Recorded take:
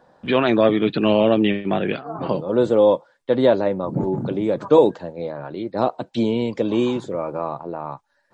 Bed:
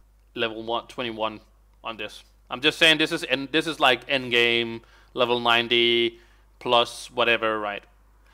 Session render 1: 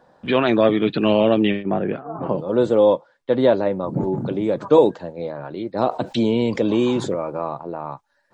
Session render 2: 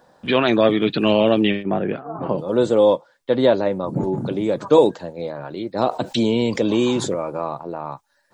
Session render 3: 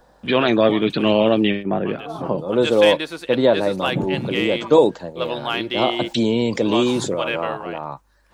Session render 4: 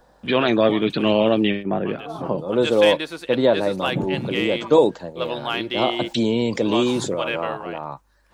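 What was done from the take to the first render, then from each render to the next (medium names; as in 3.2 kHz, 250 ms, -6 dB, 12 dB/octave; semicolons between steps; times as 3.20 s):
1.62–2.37 s: low-pass 1.2 kHz -> 1.6 kHz; 2.93–3.73 s: distance through air 51 m; 5.89–7.14 s: level flattener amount 50%
treble shelf 4.7 kHz +12 dB
add bed -5 dB
trim -1.5 dB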